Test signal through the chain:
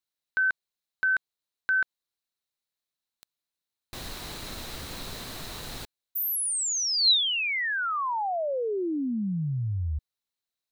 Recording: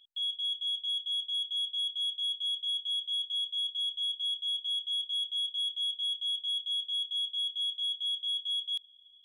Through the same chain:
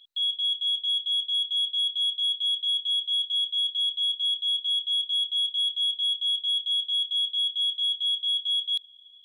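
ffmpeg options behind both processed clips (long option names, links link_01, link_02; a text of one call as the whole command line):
ffmpeg -i in.wav -af "equalizer=frequency=4000:width_type=o:width=0.28:gain=10.5,volume=4dB" out.wav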